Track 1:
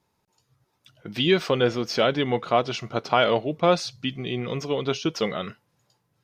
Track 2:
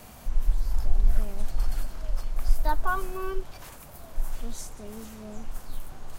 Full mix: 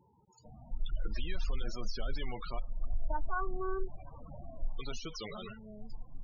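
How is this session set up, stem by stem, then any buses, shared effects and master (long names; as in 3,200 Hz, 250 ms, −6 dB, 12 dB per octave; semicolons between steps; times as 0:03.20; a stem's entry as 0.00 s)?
−10.5 dB, 0.00 s, muted 0:02.59–0:04.79, no send, every bin compressed towards the loudest bin 4 to 1
−2.0 dB, 0.45 s, no send, high-shelf EQ 3,800 Hz −11 dB; upward compression, threshold −35 dBFS; automatic ducking −7 dB, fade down 0.20 s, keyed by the first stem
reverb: not used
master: spectral peaks only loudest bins 16; brickwall limiter −24 dBFS, peak gain reduction 10 dB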